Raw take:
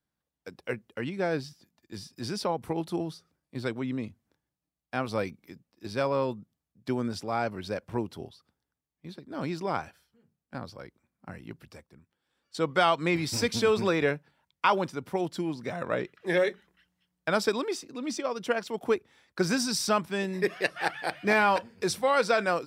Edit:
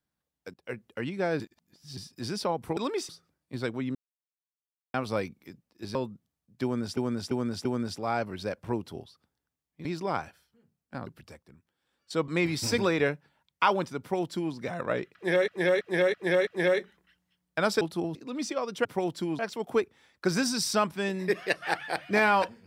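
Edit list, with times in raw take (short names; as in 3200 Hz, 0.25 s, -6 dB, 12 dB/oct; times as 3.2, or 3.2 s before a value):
0.54–0.86 fade in, from -16 dB
1.4–1.97 reverse
2.77–3.11 swap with 17.51–17.83
3.97–4.96 mute
5.97–6.22 cut
6.9–7.24 loop, 4 plays
9.1–9.45 cut
10.67–11.51 cut
12.72–12.98 cut
13.48–13.8 cut
15.02–15.56 copy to 18.53
16.17–16.5 loop, 5 plays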